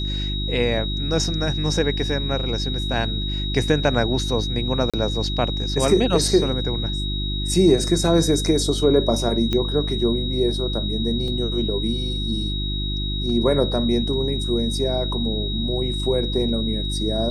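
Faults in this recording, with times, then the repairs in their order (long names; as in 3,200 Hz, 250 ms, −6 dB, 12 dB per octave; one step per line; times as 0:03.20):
mains hum 50 Hz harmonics 7 −26 dBFS
whistle 3,800 Hz −28 dBFS
0:04.90–0:04.94: drop-out 36 ms
0:09.53: click −11 dBFS
0:11.28: drop-out 2.2 ms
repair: click removal
notch filter 3,800 Hz, Q 30
hum removal 50 Hz, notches 7
repair the gap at 0:04.90, 36 ms
repair the gap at 0:11.28, 2.2 ms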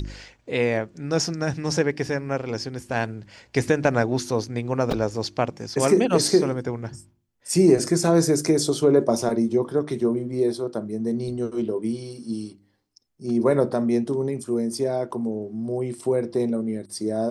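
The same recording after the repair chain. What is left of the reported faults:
none of them is left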